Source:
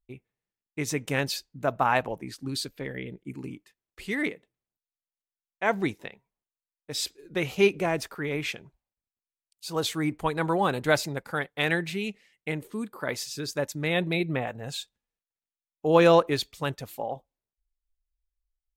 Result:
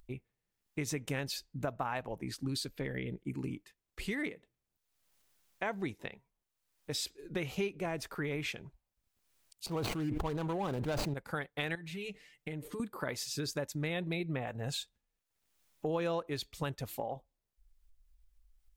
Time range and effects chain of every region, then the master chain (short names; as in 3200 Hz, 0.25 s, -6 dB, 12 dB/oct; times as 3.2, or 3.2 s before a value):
9.66–11.14 median filter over 25 samples + sustainer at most 21 dB/s
11.75–12.8 comb 6.7 ms, depth 92% + compressor 8:1, threshold -37 dBFS
whole clip: compressor 4:1, threshold -35 dBFS; low shelf 92 Hz +9 dB; upward compressor, threshold -53 dBFS